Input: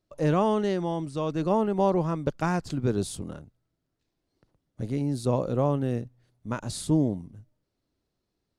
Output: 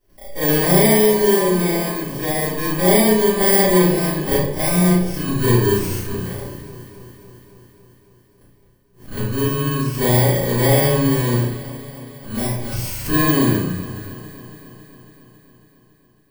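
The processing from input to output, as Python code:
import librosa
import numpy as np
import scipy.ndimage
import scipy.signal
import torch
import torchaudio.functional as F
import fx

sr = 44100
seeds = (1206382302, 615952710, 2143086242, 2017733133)

y = fx.bit_reversed(x, sr, seeds[0], block=32)
y = fx.stretch_grains(y, sr, factor=1.9, grain_ms=139.0)
y = fx.echo_alternate(y, sr, ms=138, hz=1400.0, feedback_pct=83, wet_db=-14)
y = fx.room_shoebox(y, sr, seeds[1], volume_m3=54.0, walls='mixed', distance_m=2.3)
y = fx.pre_swell(y, sr, db_per_s=150.0)
y = y * librosa.db_to_amplitude(-1.5)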